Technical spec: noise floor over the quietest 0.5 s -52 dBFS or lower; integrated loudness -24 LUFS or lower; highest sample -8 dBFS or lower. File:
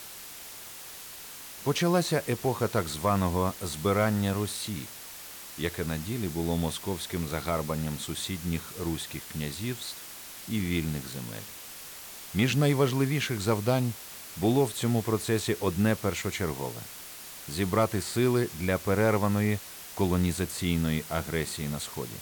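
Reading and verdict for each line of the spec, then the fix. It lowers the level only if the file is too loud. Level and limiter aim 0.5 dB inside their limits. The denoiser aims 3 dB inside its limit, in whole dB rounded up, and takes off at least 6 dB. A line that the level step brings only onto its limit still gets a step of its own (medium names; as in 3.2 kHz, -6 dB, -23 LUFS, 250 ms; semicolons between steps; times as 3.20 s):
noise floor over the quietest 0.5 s -44 dBFS: fail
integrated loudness -29.0 LUFS: pass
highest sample -14.5 dBFS: pass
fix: noise reduction 11 dB, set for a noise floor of -44 dBFS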